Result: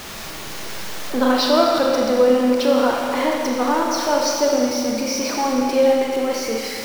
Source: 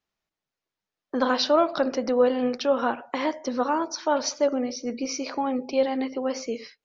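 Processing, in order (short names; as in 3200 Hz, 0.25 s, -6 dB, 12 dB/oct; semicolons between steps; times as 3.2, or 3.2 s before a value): zero-crossing step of -29.5 dBFS; Schroeder reverb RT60 2.4 s, combs from 28 ms, DRR -0.5 dB; gain +1.5 dB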